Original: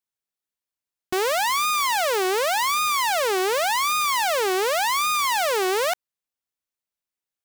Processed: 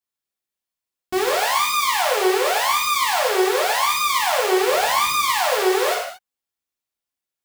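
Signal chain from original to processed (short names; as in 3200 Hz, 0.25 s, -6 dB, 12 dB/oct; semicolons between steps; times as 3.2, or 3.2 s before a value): 4.66–5.2 bell 160 Hz +7 dB 2.6 oct; non-linear reverb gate 0.26 s falling, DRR -4 dB; gain -3 dB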